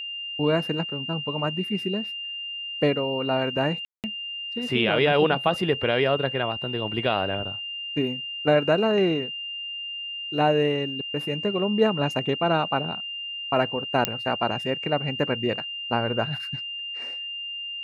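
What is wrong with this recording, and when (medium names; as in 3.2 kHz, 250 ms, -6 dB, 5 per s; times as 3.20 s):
whine 2.8 kHz -31 dBFS
3.85–4.04 s: dropout 188 ms
14.05 s: pop -5 dBFS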